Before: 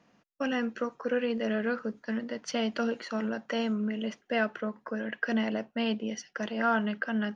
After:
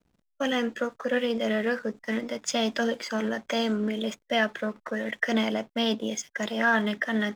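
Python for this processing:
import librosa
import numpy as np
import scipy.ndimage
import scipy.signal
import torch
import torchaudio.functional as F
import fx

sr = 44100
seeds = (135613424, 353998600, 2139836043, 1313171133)

y = fx.backlash(x, sr, play_db=-53.5)
y = fx.formant_shift(y, sr, semitones=2)
y = fx.high_shelf(y, sr, hz=3900.0, db=8.0)
y = y * librosa.db_to_amplitude(3.0)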